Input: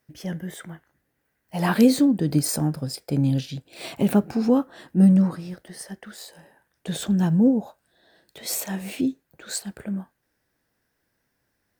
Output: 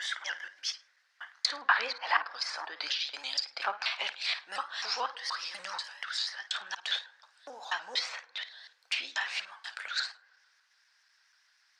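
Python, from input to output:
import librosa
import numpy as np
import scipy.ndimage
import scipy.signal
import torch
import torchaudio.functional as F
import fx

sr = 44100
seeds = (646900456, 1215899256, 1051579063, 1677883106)

y = fx.block_reorder(x, sr, ms=241.0, group=3)
y = scipy.signal.sosfilt(scipy.signal.butter(4, 1100.0, 'highpass', fs=sr, output='sos'), y)
y = fx.rev_fdn(y, sr, rt60_s=1.6, lf_ratio=0.8, hf_ratio=0.25, size_ms=18.0, drr_db=19.5)
y = fx.env_lowpass_down(y, sr, base_hz=1700.0, full_db=-33.5)
y = fx.lowpass_res(y, sr, hz=5000.0, q=2.3)
y = fx.room_flutter(y, sr, wall_m=9.1, rt60_s=0.24)
y = fx.vibrato_shape(y, sr, shape='saw_up', rate_hz=6.8, depth_cents=100.0)
y = y * librosa.db_to_amplitude(7.5)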